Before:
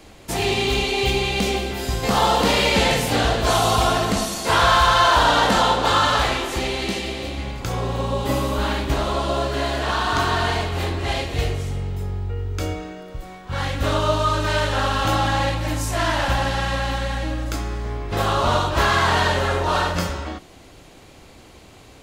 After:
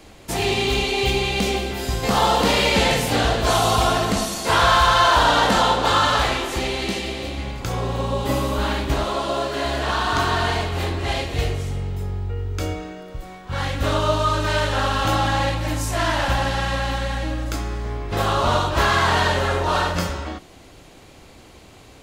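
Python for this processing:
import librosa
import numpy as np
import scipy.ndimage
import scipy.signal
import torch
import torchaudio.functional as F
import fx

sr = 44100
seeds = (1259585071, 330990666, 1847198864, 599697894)

y = fx.peak_eq(x, sr, hz=78.0, db=-11.5, octaves=1.7, at=(9.04, 9.65))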